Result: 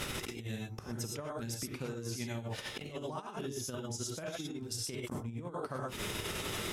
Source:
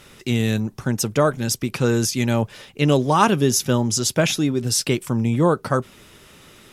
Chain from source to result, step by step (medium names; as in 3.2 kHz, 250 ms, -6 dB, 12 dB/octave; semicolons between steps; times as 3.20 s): inverted gate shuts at -21 dBFS, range -28 dB; tremolo triangle 10 Hz, depth 70%; 3.50–5.22 s: transient shaper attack +3 dB, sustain -7 dB; gated-style reverb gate 140 ms rising, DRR -1 dB; compressor with a negative ratio -48 dBFS, ratio -0.5; trim +9.5 dB